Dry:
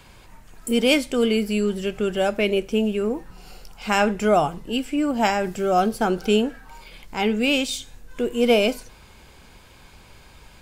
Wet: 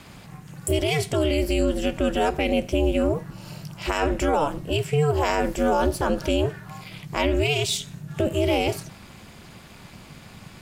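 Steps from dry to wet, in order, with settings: peak limiter -17 dBFS, peak gain reduction 10.5 dB; ring modulator 150 Hz; trim +6 dB

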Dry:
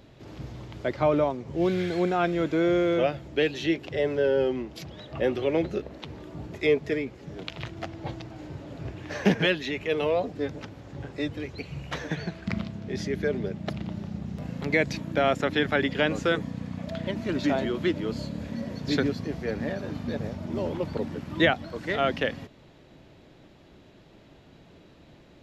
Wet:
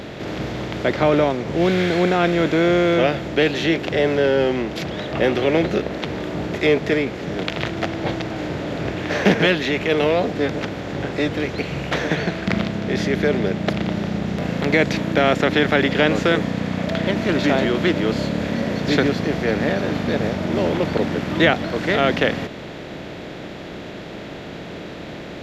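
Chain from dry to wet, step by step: spectral levelling over time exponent 0.6; trim +3.5 dB

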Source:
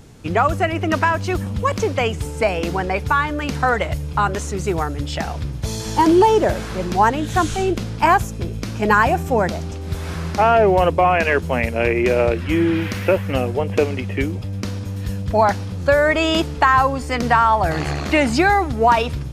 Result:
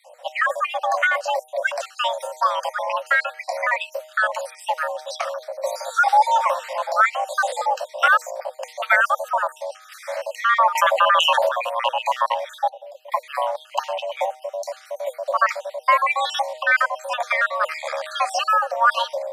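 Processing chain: random holes in the spectrogram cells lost 51%; 12.69–13.12 s: amplifier tone stack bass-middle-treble 10-0-1; de-hum 144.7 Hz, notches 3; frequency shift +480 Hz; 10.75–11.49 s: level flattener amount 70%; trim -1 dB

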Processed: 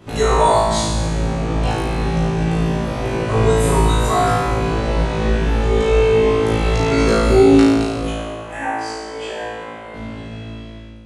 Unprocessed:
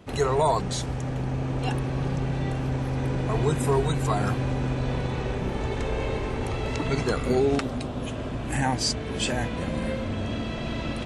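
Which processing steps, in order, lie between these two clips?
fade out at the end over 3.54 s; 8.11–9.94 s: three-band isolator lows -20 dB, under 360 Hz, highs -14 dB, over 2.4 kHz; flutter echo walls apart 3.1 m, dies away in 1.3 s; trim +3 dB

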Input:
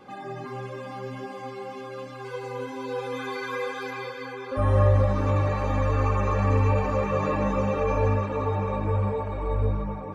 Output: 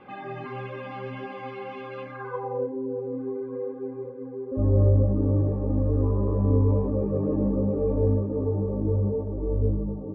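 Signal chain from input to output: 6.02–6.87 s: whistle 1 kHz -26 dBFS; low-pass sweep 2.7 kHz -> 350 Hz, 1.99–2.81 s; tape noise reduction on one side only decoder only

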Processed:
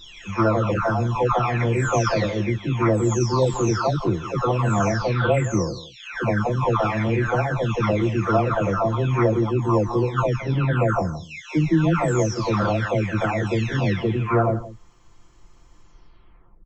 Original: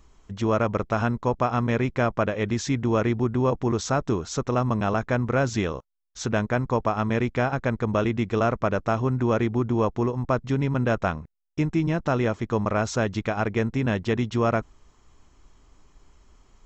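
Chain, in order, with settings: delay that grows with frequency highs early, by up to 850 ms; on a send: delay 168 ms -16 dB; on the sum: trim +5.5 dB

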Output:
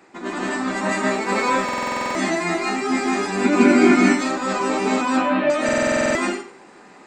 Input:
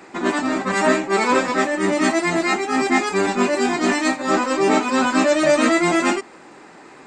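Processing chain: 1.13–1.69 s: added noise pink -52 dBFS; 3.44–3.95 s: small resonant body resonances 270/1400/2200 Hz, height 18 dB -> 15 dB, ringing for 25 ms; 5.01–5.50 s: steep low-pass 3.4 kHz 36 dB/octave; reverberation RT60 0.45 s, pre-delay 147 ms, DRR -5 dB; buffer glitch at 1.64/5.64 s, samples 2048, times 10; trim -8.5 dB

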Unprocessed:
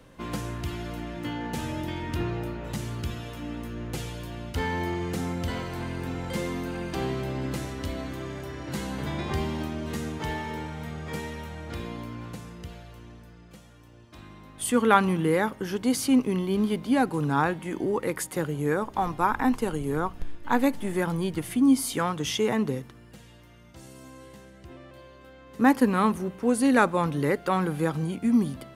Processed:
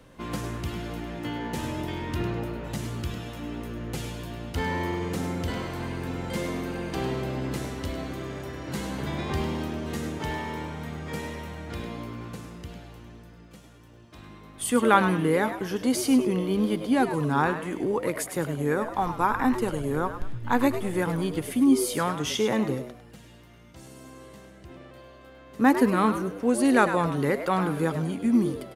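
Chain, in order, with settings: frequency-shifting echo 102 ms, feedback 31%, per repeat +110 Hz, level -10 dB

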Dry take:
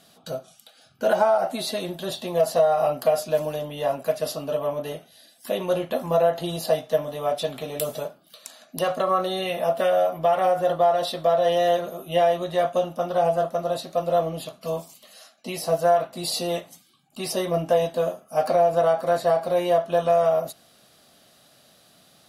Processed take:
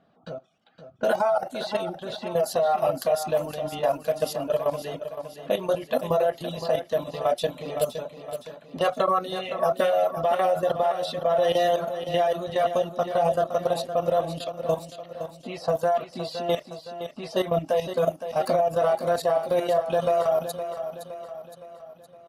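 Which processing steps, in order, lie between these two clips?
reverb removal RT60 0.83 s; level held to a coarse grid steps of 13 dB; level-controlled noise filter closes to 1.3 kHz, open at -28 dBFS; on a send: feedback delay 515 ms, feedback 50%, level -10 dB; on the sum: trim +5 dB

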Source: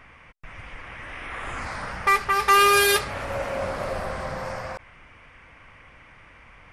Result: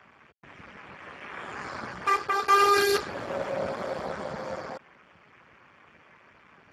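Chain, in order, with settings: treble shelf 3.6 kHz -6 dB; Speex 8 kbps 32 kHz

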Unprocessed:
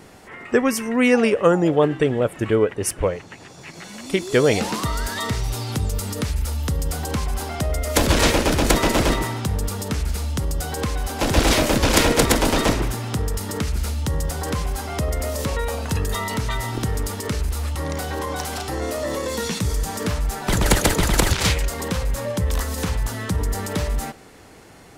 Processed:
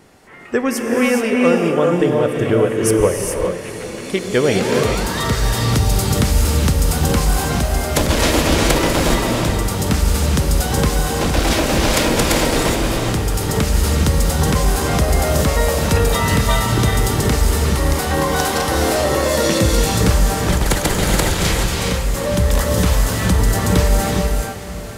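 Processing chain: level rider gain up to 11.5 dB; echo that smears into a reverb 478 ms, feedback 67%, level -15 dB; gated-style reverb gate 450 ms rising, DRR 0.5 dB; trim -3.5 dB

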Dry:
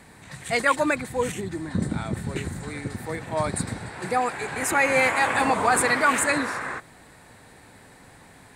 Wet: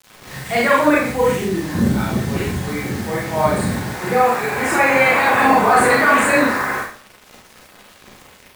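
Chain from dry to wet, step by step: peaking EQ 12 kHz -13.5 dB 1.9 oct; hum notches 50/100/150/200/250 Hz; in parallel at +2 dB: peak limiter -17 dBFS, peak gain reduction 7.5 dB; on the sum: word length cut 6-bit, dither none; Schroeder reverb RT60 0.46 s, combs from 30 ms, DRR -5.5 dB; trim -3 dB

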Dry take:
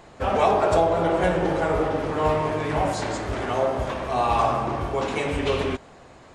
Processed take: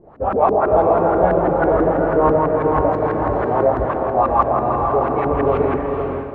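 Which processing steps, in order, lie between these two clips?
LFO low-pass saw up 6.1 Hz 300–1600 Hz; echo that smears into a reverb 473 ms, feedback 46%, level -4 dB; level rider gain up to 3.5 dB

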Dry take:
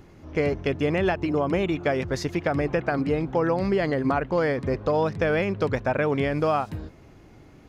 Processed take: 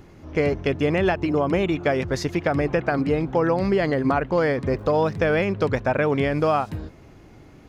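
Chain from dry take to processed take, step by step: 4.75–5.18 s: crackle 260 per s -51 dBFS; trim +2.5 dB

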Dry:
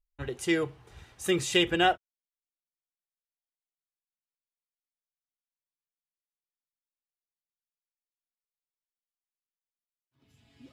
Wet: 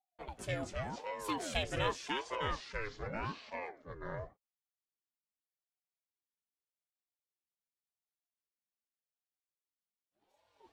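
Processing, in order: ever faster or slower copies 141 ms, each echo -4 st, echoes 3; ring modulator with a swept carrier 480 Hz, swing 60%, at 0.86 Hz; trim -8 dB

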